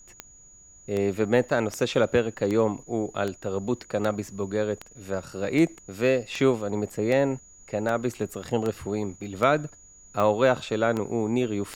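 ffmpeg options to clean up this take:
ffmpeg -i in.wav -af "adeclick=threshold=4,bandreject=frequency=6800:width=30,agate=range=-21dB:threshold=-44dB" out.wav

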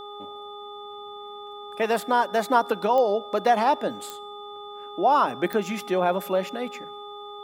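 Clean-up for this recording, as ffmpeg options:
ffmpeg -i in.wav -af "adeclick=threshold=4,bandreject=frequency=411.1:width_type=h:width=4,bandreject=frequency=822.2:width_type=h:width=4,bandreject=frequency=1233.3:width_type=h:width=4,bandreject=frequency=3500:width=30" out.wav

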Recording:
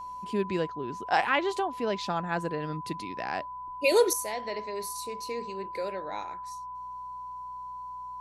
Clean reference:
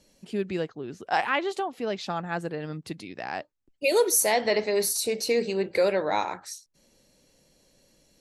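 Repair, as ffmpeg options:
ffmpeg -i in.wav -af "bandreject=frequency=61.7:width_type=h:width=4,bandreject=frequency=123.4:width_type=h:width=4,bandreject=frequency=185.1:width_type=h:width=4,bandreject=frequency=1000:width=30,asetnsamples=nb_out_samples=441:pad=0,asendcmd='4.13 volume volume 11.5dB',volume=0dB" out.wav

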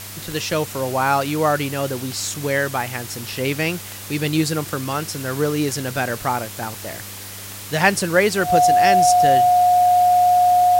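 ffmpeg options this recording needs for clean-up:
ffmpeg -i in.wav -af "adeclick=threshold=4,bandreject=frequency=99.8:width_type=h:width=4,bandreject=frequency=199.6:width_type=h:width=4,bandreject=frequency=299.4:width_type=h:width=4,bandreject=frequency=399.2:width_type=h:width=4,bandreject=frequency=499:width_type=h:width=4,bandreject=frequency=720:width=30,afwtdn=0.02" out.wav

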